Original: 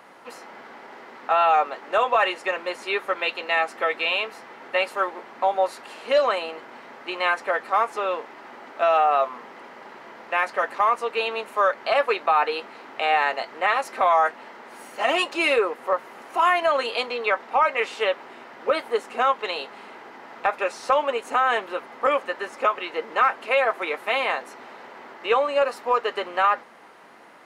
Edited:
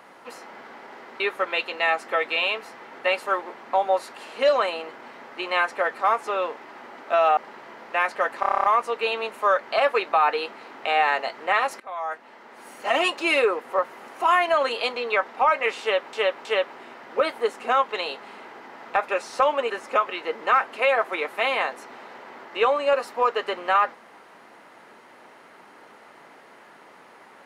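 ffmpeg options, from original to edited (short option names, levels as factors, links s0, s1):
-filter_complex "[0:a]asplit=15[s0][s1][s2][s3][s4][s5][s6][s7][s8][s9][s10][s11][s12][s13][s14];[s0]atrim=end=1.202[s15];[s1]atrim=start=2.888:end=9.062[s16];[s2]atrim=start=9.748:end=10.812[s17];[s3]atrim=start=10.778:end=10.812[s18];[s4]atrim=start=10.778:end=10.812[s19];[s5]atrim=start=10.778:end=10.812[s20];[s6]atrim=start=10.778:end=10.812[s21];[s7]atrim=start=10.778:end=10.812[s22];[s8]atrim=start=10.778:end=10.812[s23];[s9]atrim=start=10.778:end=10.812[s24];[s10]atrim=start=10.778:end=13.94,asetpts=PTS-STARTPTS,afade=t=out:st=3.158:d=0.004:c=hsin:silence=0.0749894[s25];[s11]atrim=start=13.94:end=18.272,asetpts=PTS-STARTPTS,afade=t=in:d=1.12:silence=0.0749894[s26];[s12]atrim=start=17.948:end=18.272[s27];[s13]atrim=start=17.948:end=21.202[s28];[s14]atrim=start=22.388[s29];[s15][s16]acrossfade=d=0.004:c1=hsin:c2=hsin[s30];[s30][s17]acrossfade=d=0.004:c1=hsin:c2=hsin[s31];[s31][s18]acrossfade=d=0.004:c1=hsin:c2=hsin[s32];[s32][s19]acrossfade=d=0.004:c1=hsin:c2=hsin[s33];[s33][s20]acrossfade=d=0.004:c1=hsin:c2=hsin[s34];[s34][s21]acrossfade=d=0.004:c1=hsin:c2=hsin[s35];[s35][s22]acrossfade=d=0.004:c1=hsin:c2=hsin[s36];[s36][s23]acrossfade=d=0.004:c1=hsin:c2=hsin[s37];[s37][s24]acrossfade=d=0.004:c1=hsin:c2=hsin[s38];[s25][s26]concat=n=2:v=0:a=1[s39];[s38][s39]acrossfade=d=0.004:c1=hsin:c2=hsin[s40];[s40][s27]acrossfade=d=0.004:c1=hsin:c2=hsin[s41];[s41][s28]acrossfade=d=0.004:c1=hsin:c2=hsin[s42];[s42][s29]acrossfade=d=0.004:c1=hsin:c2=hsin"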